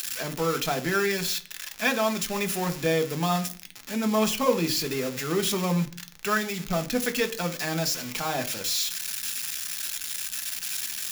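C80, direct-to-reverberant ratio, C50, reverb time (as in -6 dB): 21.5 dB, 7.0 dB, 17.0 dB, 0.40 s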